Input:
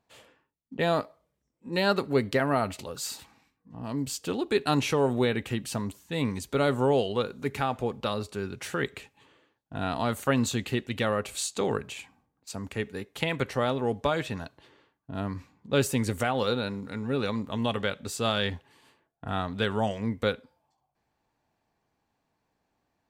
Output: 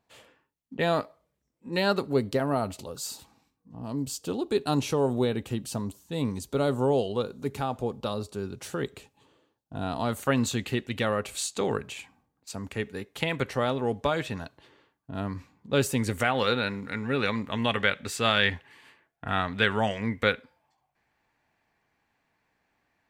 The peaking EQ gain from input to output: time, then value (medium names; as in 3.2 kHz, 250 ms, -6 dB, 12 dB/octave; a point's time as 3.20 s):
peaking EQ 2 kHz 1.2 oct
1.76 s +1 dB
2.22 s -9.5 dB
9.81 s -9.5 dB
10.30 s +0.5 dB
15.98 s +0.5 dB
16.44 s +11 dB